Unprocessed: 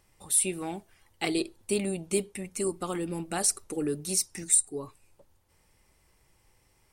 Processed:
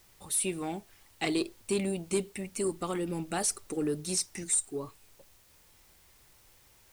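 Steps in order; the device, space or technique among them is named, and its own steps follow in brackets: compact cassette (saturation -19.5 dBFS, distortion -15 dB; low-pass 9.5 kHz; wow and flutter; white noise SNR 28 dB)

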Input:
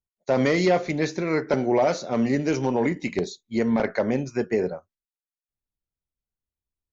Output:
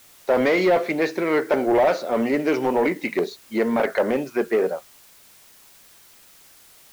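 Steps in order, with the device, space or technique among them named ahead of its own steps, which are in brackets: tape answering machine (band-pass 340–3000 Hz; saturation -19 dBFS, distortion -14 dB; wow and flutter; white noise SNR 28 dB); trim +7 dB

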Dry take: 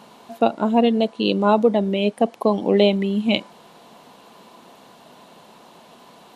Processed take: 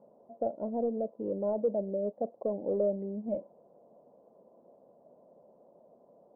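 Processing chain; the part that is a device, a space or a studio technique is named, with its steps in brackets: overdriven synthesiser ladder filter (saturation -12.5 dBFS, distortion -13 dB; four-pole ladder low-pass 620 Hz, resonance 70%); trim -5 dB

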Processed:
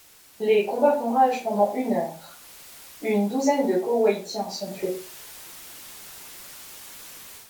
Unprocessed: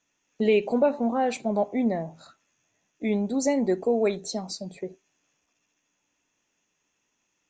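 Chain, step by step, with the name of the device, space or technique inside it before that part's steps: filmed off a television (band-pass 220–6400 Hz; peaking EQ 870 Hz +7.5 dB 0.36 oct; reverberation RT60 0.35 s, pre-delay 9 ms, DRR -6.5 dB; white noise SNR 24 dB; level rider gain up to 10 dB; trim -7 dB; AAC 96 kbps 44.1 kHz)

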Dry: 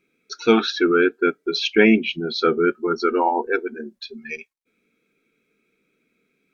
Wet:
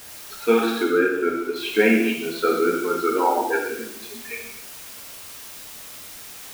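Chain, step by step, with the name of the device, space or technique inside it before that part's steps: wax cylinder (band-pass 250–2700 Hz; wow and flutter; white noise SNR 16 dB); 0.83–1.56 s: treble shelf 2.6 kHz -10 dB; gated-style reverb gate 330 ms falling, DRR -2 dB; trim -4 dB

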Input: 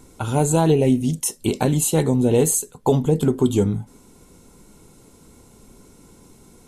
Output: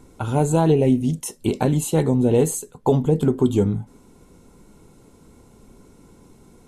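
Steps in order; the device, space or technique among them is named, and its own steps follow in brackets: behind a face mask (treble shelf 3.1 kHz -8 dB)

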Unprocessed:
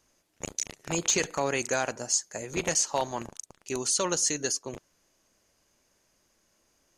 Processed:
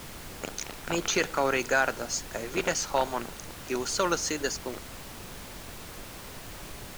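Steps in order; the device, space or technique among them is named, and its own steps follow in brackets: horn gramophone (band-pass 190–4400 Hz; peaking EQ 1.4 kHz +9 dB 0.28 oct; wow and flutter; pink noise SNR 10 dB); trim +2 dB

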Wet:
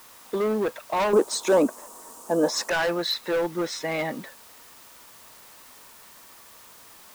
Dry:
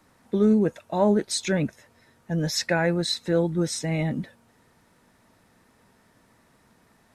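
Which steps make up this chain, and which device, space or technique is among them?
drive-through speaker (band-pass 450–3900 Hz; peaking EQ 1.1 kHz +8.5 dB 0.42 oct; hard clipper -26 dBFS, distortion -7 dB; white noise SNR 20 dB); 1.13–2.70 s: ten-band graphic EQ 125 Hz -9 dB, 250 Hz +11 dB, 500 Hz +6 dB, 1 kHz +9 dB, 2 kHz -10 dB, 4 kHz -5 dB, 8 kHz +10 dB; trim +5 dB

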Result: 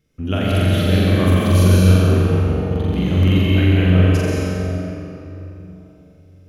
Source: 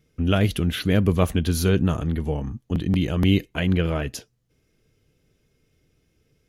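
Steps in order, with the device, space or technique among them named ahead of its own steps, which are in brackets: tunnel (flutter echo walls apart 7.5 m, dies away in 1.2 s; reverberation RT60 3.4 s, pre-delay 111 ms, DRR -3.5 dB); trim -3.5 dB

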